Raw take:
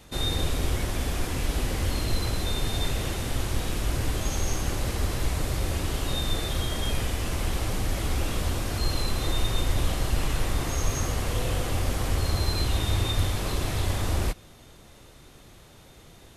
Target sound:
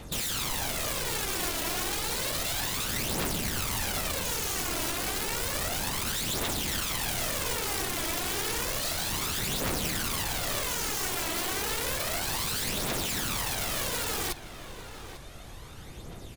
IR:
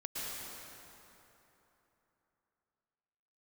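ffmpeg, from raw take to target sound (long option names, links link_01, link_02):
-filter_complex "[0:a]asettb=1/sr,asplit=3[link_01][link_02][link_03];[link_01]atrim=end=3.444[link_04];[link_02]atrim=start=3.44:end=4.51,asetpts=PTS-STARTPTS,afade=type=in:duration=0.004:curve=qsin,afade=type=out:start_time=1.066:duration=0.004:curve=qsin,bandreject=frequency=60:width_type=h:width=6,bandreject=frequency=120:width_type=h:width=6,bandreject=frequency=180:width_type=h:width=6,bandreject=frequency=240:width_type=h:width=6[link_05];[link_03]atrim=start=4.506[link_06];[link_04][link_05]acrossfade=duration=0.004:curve1=hsin:curve2=qsin[link_07];[link_07][link_06]acrossfade=duration=0.004:curve1=qsin:curve2=hsin,asplit=2[link_08][link_09];[link_09]acompressor=threshold=-34dB:ratio=10,volume=-0.5dB[link_10];[link_08][link_10]amix=inputs=2:normalize=0,aeval=exprs='(mod(16.8*val(0)+1,2)-1)/16.8':channel_layout=same,aphaser=in_gain=1:out_gain=1:delay=3.1:decay=0.52:speed=0.31:type=triangular,asplit=2[link_11][link_12];[link_12]adelay=845,lowpass=frequency=3000:poles=1,volume=-11.5dB,asplit=2[link_13][link_14];[link_14]adelay=845,lowpass=frequency=3000:poles=1,volume=0.4,asplit=2[link_15][link_16];[link_16]adelay=845,lowpass=frequency=3000:poles=1,volume=0.4,asplit=2[link_17][link_18];[link_18]adelay=845,lowpass=frequency=3000:poles=1,volume=0.4[link_19];[link_11][link_13][link_15][link_17][link_19]amix=inputs=5:normalize=0,volume=-3.5dB"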